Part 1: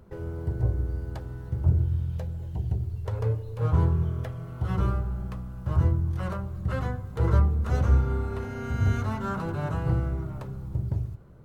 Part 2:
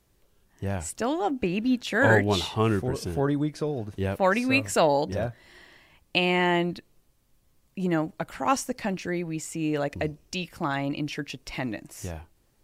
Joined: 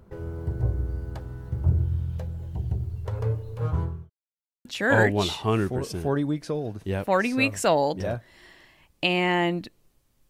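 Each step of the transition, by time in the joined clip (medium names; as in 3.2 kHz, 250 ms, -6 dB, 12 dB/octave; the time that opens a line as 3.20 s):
part 1
3.56–4.10 s: fade out linear
4.10–4.65 s: mute
4.65 s: go over to part 2 from 1.77 s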